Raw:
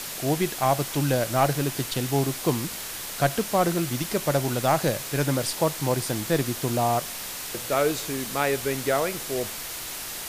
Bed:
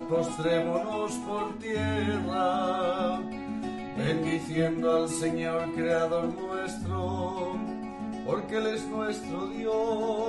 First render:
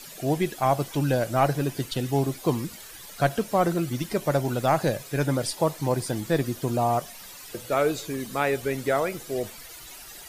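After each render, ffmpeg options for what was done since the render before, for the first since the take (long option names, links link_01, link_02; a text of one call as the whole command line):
ffmpeg -i in.wav -af "afftdn=noise_reduction=13:noise_floor=-35" out.wav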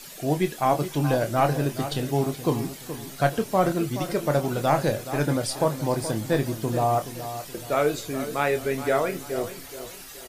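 ffmpeg -i in.wav -filter_complex "[0:a]asplit=2[link_01][link_02];[link_02]adelay=27,volume=-9dB[link_03];[link_01][link_03]amix=inputs=2:normalize=0,asplit=2[link_04][link_05];[link_05]adelay=424,lowpass=frequency=3200:poles=1,volume=-11.5dB,asplit=2[link_06][link_07];[link_07]adelay=424,lowpass=frequency=3200:poles=1,volume=0.38,asplit=2[link_08][link_09];[link_09]adelay=424,lowpass=frequency=3200:poles=1,volume=0.38,asplit=2[link_10][link_11];[link_11]adelay=424,lowpass=frequency=3200:poles=1,volume=0.38[link_12];[link_04][link_06][link_08][link_10][link_12]amix=inputs=5:normalize=0" out.wav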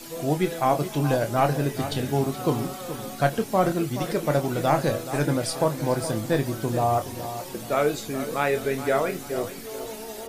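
ffmpeg -i in.wav -i bed.wav -filter_complex "[1:a]volume=-9.5dB[link_01];[0:a][link_01]amix=inputs=2:normalize=0" out.wav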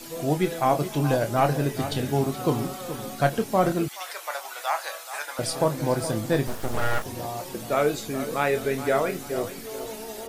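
ffmpeg -i in.wav -filter_complex "[0:a]asettb=1/sr,asplit=3[link_01][link_02][link_03];[link_01]atrim=end=3.884[link_04];[link_02]atrim=start=3.88:end=5.39,asetpts=PTS-STARTPTS,afade=type=in:duration=0.004:curve=qsin,afade=type=out:start_time=1.506:duration=0.004:curve=qsin,highpass=frequency=830:width=0.5412,highpass=frequency=830:width=1.3066[link_05];[link_03]atrim=start=5.386[link_06];[link_04][link_05]acrossfade=duration=0.004:curve1=hsin:curve2=qsin[link_07];[link_07][link_06]acrossfade=duration=0.004:curve1=qsin:curve2=hsin,asettb=1/sr,asplit=3[link_08][link_09][link_10];[link_08]atrim=end=6.474[link_11];[link_09]atrim=start=6.47:end=7.05,asetpts=PTS-STARTPTS,afade=type=in:duration=0.004:curve=qsin,afade=type=out:start_time=0.576:duration=0.004:curve=qsin,aeval=exprs='abs(val(0))':channel_layout=same[link_12];[link_10]atrim=start=7.046[link_13];[link_11][link_12]acrossfade=duration=0.004:curve1=hsin:curve2=qsin[link_14];[link_14][link_13]acrossfade=duration=0.004:curve1=qsin:curve2=hsin" out.wav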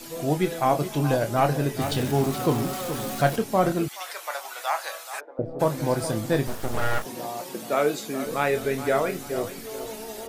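ffmpeg -i in.wav -filter_complex "[0:a]asettb=1/sr,asplit=3[link_01][link_02][link_03];[link_01]atrim=end=1.814[link_04];[link_02]atrim=start=1.81:end=3.36,asetpts=PTS-STARTPTS,afade=type=in:duration=0.004:curve=qsin,afade=type=out:start_time=1.546:duration=0.004:curve=qsin,aeval=exprs='val(0)+0.5*0.0266*sgn(val(0))':channel_layout=same[link_05];[link_03]atrim=start=3.356[link_06];[link_04][link_05]acrossfade=duration=0.004:curve1=hsin:curve2=qsin[link_07];[link_07][link_06]acrossfade=duration=0.004:curve1=qsin:curve2=hsin,asplit=3[link_08][link_09][link_10];[link_08]afade=type=out:start_time=5.19:duration=0.02[link_11];[link_09]lowpass=frequency=440:width_type=q:width=1.7,afade=type=in:start_time=5.19:duration=0.02,afade=type=out:start_time=5.59:duration=0.02[link_12];[link_10]afade=type=in:start_time=5.59:duration=0.02[link_13];[link_11][link_12][link_13]amix=inputs=3:normalize=0,asettb=1/sr,asplit=3[link_14][link_15][link_16];[link_14]atrim=end=7.054[link_17];[link_15]atrim=start=7.05:end=8.26,asetpts=PTS-STARTPTS,afade=type=in:duration=0.004:curve=qsin,afade=type=out:start_time=1.206:duration=0.004:curve=qsin,highpass=frequency=160:width=0.5412,highpass=frequency=160:width=1.3066[link_18];[link_16]atrim=start=8.256[link_19];[link_17][link_18]acrossfade=duration=0.004:curve1=hsin:curve2=qsin[link_20];[link_20][link_19]acrossfade=duration=0.004:curve1=qsin:curve2=hsin" out.wav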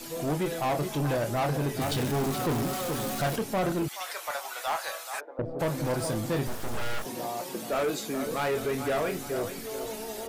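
ffmpeg -i in.wav -af "asoftclip=type=tanh:threshold=-23.5dB" out.wav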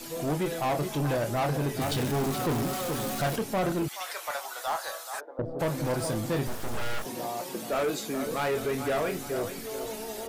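ffmpeg -i in.wav -filter_complex "[0:a]asettb=1/sr,asplit=3[link_01][link_02][link_03];[link_01]atrim=end=4.454[link_04];[link_02]atrim=start=4.45:end=5.59,asetpts=PTS-STARTPTS,afade=type=in:duration=0.004:curve=qsin,afade=type=out:start_time=1.136:duration=0.004:curve=qsin,equalizer=frequency=2400:width=2.6:gain=-8.5[link_05];[link_03]atrim=start=5.586[link_06];[link_04][link_05]acrossfade=duration=0.004:curve1=hsin:curve2=qsin[link_07];[link_07][link_06]acrossfade=duration=0.004:curve1=qsin:curve2=hsin" out.wav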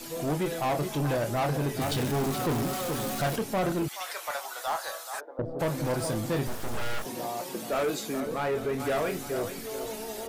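ffmpeg -i in.wav -filter_complex "[0:a]asettb=1/sr,asplit=3[link_01][link_02][link_03];[link_01]atrim=end=8.204[link_04];[link_02]atrim=start=8.2:end=8.8,asetpts=PTS-STARTPTS,afade=type=in:duration=0.004:curve=qsin,afade=type=out:start_time=0.596:duration=0.004:curve=qsin,highshelf=frequency=2700:gain=-8.5[link_05];[link_03]atrim=start=8.796[link_06];[link_04][link_05]acrossfade=duration=0.004:curve1=hsin:curve2=qsin[link_07];[link_07][link_06]acrossfade=duration=0.004:curve1=qsin:curve2=hsin" out.wav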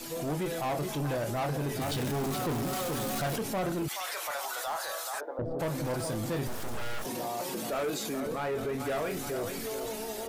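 ffmpeg -i in.wav -af "dynaudnorm=framelen=240:gausssize=9:maxgain=6.5dB,alimiter=level_in=3.5dB:limit=-24dB:level=0:latency=1:release=29,volume=-3.5dB" out.wav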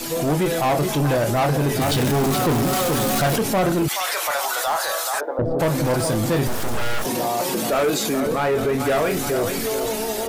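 ffmpeg -i in.wav -af "volume=12dB" out.wav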